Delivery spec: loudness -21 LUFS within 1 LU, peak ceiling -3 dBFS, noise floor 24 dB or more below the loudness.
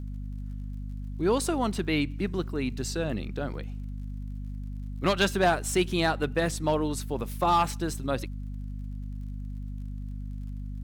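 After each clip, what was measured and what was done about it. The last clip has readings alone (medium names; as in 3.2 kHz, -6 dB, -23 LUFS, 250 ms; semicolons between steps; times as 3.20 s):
tick rate 43 per s; hum 50 Hz; highest harmonic 250 Hz; hum level -33 dBFS; loudness -30.0 LUFS; peak level -14.0 dBFS; loudness target -21.0 LUFS
-> de-click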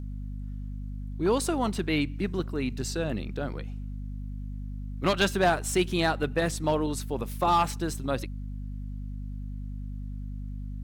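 tick rate 0.74 per s; hum 50 Hz; highest harmonic 250 Hz; hum level -33 dBFS
-> hum notches 50/100/150/200/250 Hz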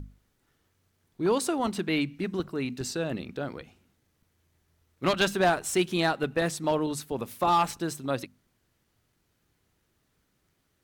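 hum not found; loudness -28.5 LUFS; peak level -14.5 dBFS; loudness target -21.0 LUFS
-> trim +7.5 dB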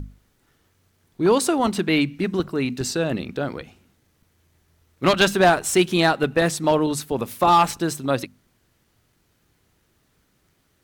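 loudness -21.0 LUFS; peak level -7.0 dBFS; noise floor -66 dBFS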